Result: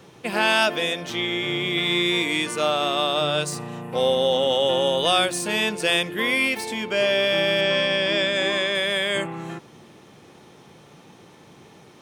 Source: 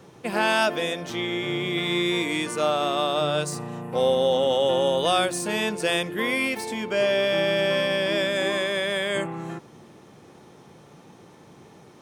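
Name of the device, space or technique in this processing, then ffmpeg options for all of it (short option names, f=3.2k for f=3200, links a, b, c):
presence and air boost: -filter_complex "[0:a]equalizer=f=3k:t=o:w=1.5:g=5.5,highshelf=f=10k:g=3.5,asettb=1/sr,asplit=3[a][b][c];[a]atrim=end=7.614[d];[b]atrim=start=7.61:end=8.75,asetpts=PTS-STARTPTS,afade=t=in:d=0.004:c=qsin,afade=t=out:st=1.136:d=0.004:c=qsin,lowpass=f=8.1k:w=0.5412,lowpass=f=8.1k:w=1.3066[e];[c]atrim=start=8.746[f];[d][e]acrossfade=d=0.004:c1=hsin:c2=qsin[g];[g][f]acrossfade=d=0.004:c1=qsin:c2=hsin"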